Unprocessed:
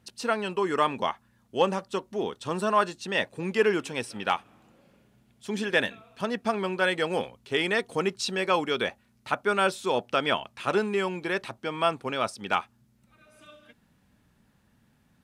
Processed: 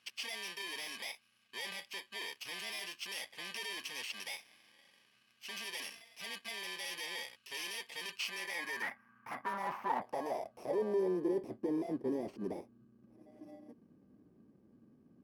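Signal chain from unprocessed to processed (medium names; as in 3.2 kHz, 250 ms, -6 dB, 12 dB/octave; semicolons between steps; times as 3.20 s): bit-reversed sample order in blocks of 32 samples; 8.82–10.02 s: graphic EQ 125/250/500/1000/2000/4000/8000 Hz +7/+10/-8/+7/+5/-10/-12 dB; valve stage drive 38 dB, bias 0.5; band-pass sweep 2.8 kHz -> 340 Hz, 8.13–11.42 s; trim +13 dB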